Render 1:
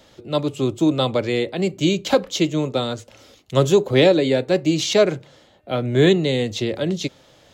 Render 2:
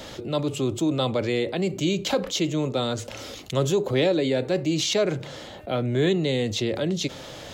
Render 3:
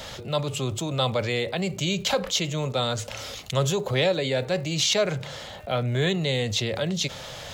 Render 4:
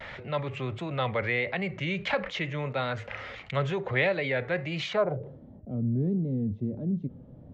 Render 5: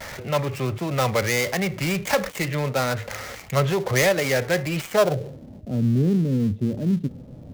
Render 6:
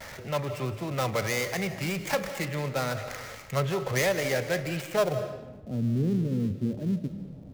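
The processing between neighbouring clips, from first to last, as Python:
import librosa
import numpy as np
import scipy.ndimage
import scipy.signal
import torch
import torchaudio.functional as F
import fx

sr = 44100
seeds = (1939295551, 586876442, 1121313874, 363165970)

y1 = fx.env_flatten(x, sr, amount_pct=50)
y1 = F.gain(torch.from_numpy(y1), -8.5).numpy()
y2 = fx.peak_eq(y1, sr, hz=310.0, db=-14.0, octaves=0.87)
y2 = fx.dmg_crackle(y2, sr, seeds[0], per_s=180.0, level_db=-47.0)
y2 = F.gain(torch.from_numpy(y2), 3.0).numpy()
y3 = fx.filter_sweep_lowpass(y2, sr, from_hz=2000.0, to_hz=260.0, start_s=4.86, end_s=5.38, q=3.4)
y3 = fx.vibrato(y3, sr, rate_hz=1.5, depth_cents=73.0)
y3 = F.gain(torch.from_numpy(y3), -5.0).numpy()
y4 = fx.dead_time(y3, sr, dead_ms=0.13)
y4 = F.gain(torch.from_numpy(y4), 7.5).numpy()
y5 = fx.rev_freeverb(y4, sr, rt60_s=1.0, hf_ratio=0.8, predelay_ms=120, drr_db=9.5)
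y5 = F.gain(torch.from_numpy(y5), -6.5).numpy()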